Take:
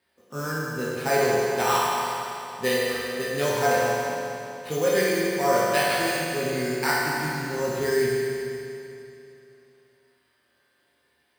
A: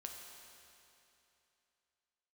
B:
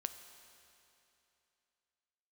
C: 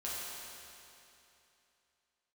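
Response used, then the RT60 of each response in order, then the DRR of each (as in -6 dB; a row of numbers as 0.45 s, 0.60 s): C; 2.9 s, 2.9 s, 2.9 s; 1.0 dB, 8.5 dB, -8.0 dB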